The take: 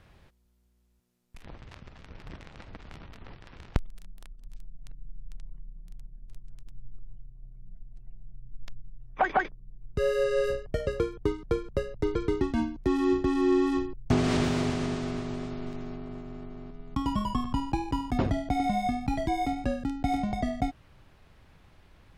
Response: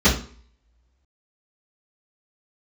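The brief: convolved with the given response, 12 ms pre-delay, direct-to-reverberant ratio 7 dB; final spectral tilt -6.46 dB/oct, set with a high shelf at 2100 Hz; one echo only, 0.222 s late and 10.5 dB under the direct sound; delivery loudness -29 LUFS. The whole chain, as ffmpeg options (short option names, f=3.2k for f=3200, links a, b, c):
-filter_complex "[0:a]highshelf=f=2.1k:g=-8.5,aecho=1:1:222:0.299,asplit=2[a][b];[1:a]atrim=start_sample=2205,adelay=12[c];[b][c]afir=irnorm=-1:irlink=0,volume=-27.5dB[d];[a][d]amix=inputs=2:normalize=0,volume=-1.5dB"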